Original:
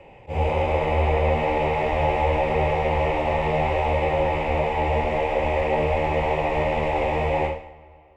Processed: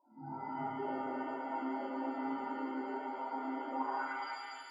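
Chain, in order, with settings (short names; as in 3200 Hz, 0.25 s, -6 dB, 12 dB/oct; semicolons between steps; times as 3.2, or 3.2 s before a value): sample sorter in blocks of 16 samples; spectral gain 6.84–7.29, 390–1700 Hz +12 dB; in parallel at -9 dB: decimation with a swept rate 35×, swing 60% 0.75 Hz; on the sum: HPF 110 Hz 24 dB/oct; notch 630 Hz, Q 12; loudest bins only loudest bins 4; band-pass sweep 210 Hz -> 3500 Hz, 6.35–7; on a send: flutter echo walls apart 8 m, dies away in 0.49 s; on the sum: speed mistake 45 rpm record played at 78 rpm; high shelf 3100 Hz -9 dB; shimmer reverb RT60 1.9 s, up +7 st, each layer -8 dB, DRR -7 dB; gain -7 dB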